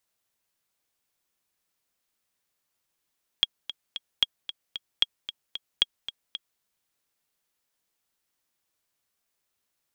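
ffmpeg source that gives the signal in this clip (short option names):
-f lavfi -i "aevalsrc='pow(10,(-6.5-13.5*gte(mod(t,3*60/226),60/226))/20)*sin(2*PI*3290*mod(t,60/226))*exp(-6.91*mod(t,60/226)/0.03)':d=3.18:s=44100"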